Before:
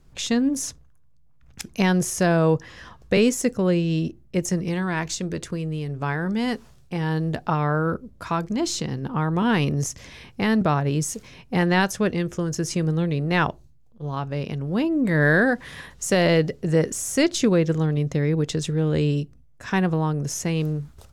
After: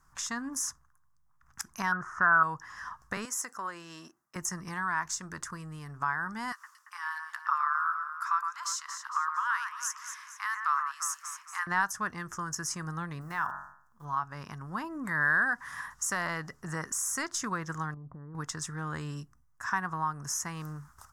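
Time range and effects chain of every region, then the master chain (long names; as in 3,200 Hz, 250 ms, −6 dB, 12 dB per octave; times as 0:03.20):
0:01.92–0:02.43: one scale factor per block 7 bits + low-pass with resonance 1,400 Hz, resonance Q 6.3
0:03.25–0:04.36: high-pass filter 410 Hz + downward compressor 2.5 to 1, threshold −26 dBFS
0:06.52–0:11.67: Chebyshev high-pass filter 1,100 Hz, order 4 + delay that swaps between a low-pass and a high-pass 114 ms, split 2,400 Hz, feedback 64%, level −7 dB
0:13.21–0:14.05: one scale factor per block 7 bits + hum removal 46.3 Hz, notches 40 + downward compressor 2 to 1, threshold −27 dBFS
0:17.94–0:18.35: downward compressor 3 to 1, threshold −29 dBFS + Gaussian smoothing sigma 9.5 samples
whole clip: low shelf with overshoot 740 Hz −13.5 dB, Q 3; downward compressor 1.5 to 1, threshold −34 dBFS; flat-topped bell 3,100 Hz −14 dB 1.2 octaves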